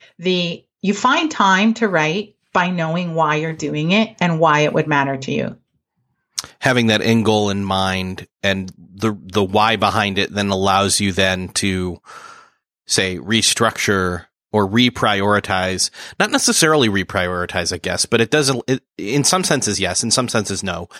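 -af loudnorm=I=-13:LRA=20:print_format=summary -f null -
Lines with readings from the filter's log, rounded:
Input Integrated:    -17.2 LUFS
Input True Peak:      -1.4 dBTP
Input LRA:             1.7 LU
Input Threshold:     -27.5 LUFS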